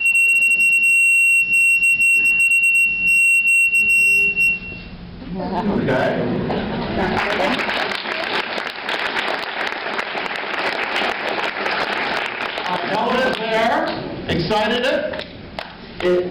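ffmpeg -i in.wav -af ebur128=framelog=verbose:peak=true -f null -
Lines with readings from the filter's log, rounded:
Integrated loudness:
  I:         -15.9 LUFS
  Threshold: -26.2 LUFS
Loudness range:
  LRA:         9.7 LU
  Threshold: -36.8 LUFS
  LRA low:   -21.5 LUFS
  LRA high:  -11.8 LUFS
True peak:
  Peak:      -11.7 dBFS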